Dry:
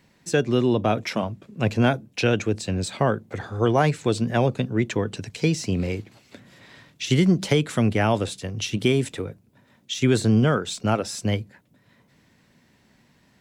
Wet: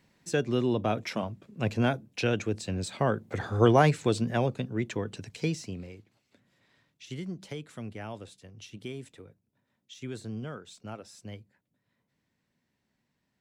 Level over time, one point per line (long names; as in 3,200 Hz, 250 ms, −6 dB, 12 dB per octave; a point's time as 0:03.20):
0:02.96 −6.5 dB
0:03.55 +1 dB
0:04.60 −8 dB
0:05.50 −8 dB
0:05.93 −19 dB